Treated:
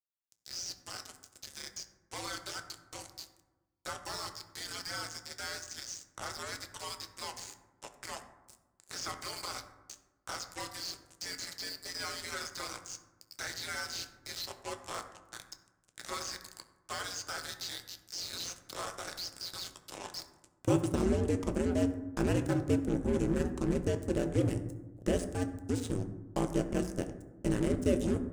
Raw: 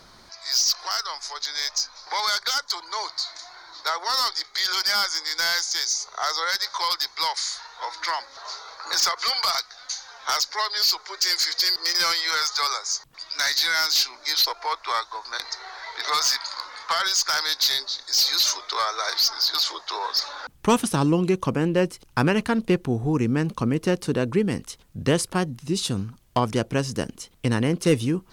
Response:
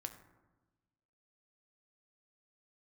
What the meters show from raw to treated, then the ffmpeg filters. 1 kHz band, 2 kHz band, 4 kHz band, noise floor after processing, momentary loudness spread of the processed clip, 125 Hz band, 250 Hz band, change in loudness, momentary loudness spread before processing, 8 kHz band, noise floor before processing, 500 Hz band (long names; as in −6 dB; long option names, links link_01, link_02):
−16.5 dB, −15.5 dB, −19.5 dB, −74 dBFS, 16 LU, −8.0 dB, −7.5 dB, −13.0 dB, 11 LU, −15.0 dB, −52 dBFS, −8.0 dB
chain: -filter_complex "[0:a]acrusher=bits=3:mix=0:aa=0.5,equalizer=frequency=125:width_type=o:width=1:gain=-3,equalizer=frequency=1000:width_type=o:width=1:gain=-11,equalizer=frequency=2000:width_type=o:width=1:gain=-6,equalizer=frequency=4000:width_type=o:width=1:gain=-8,equalizer=frequency=8000:width_type=o:width=1:gain=11,equalizer=frequency=16000:width_type=o:width=1:gain=-7,aeval=exprs='val(0)*sin(2*PI*88*n/s)':channel_layout=same,acrossover=split=3400[link_01][link_02];[link_02]acompressor=threshold=-39dB:ratio=4:attack=1:release=60[link_03];[link_01][link_03]amix=inputs=2:normalize=0[link_04];[1:a]atrim=start_sample=2205[link_05];[link_04][link_05]afir=irnorm=-1:irlink=0"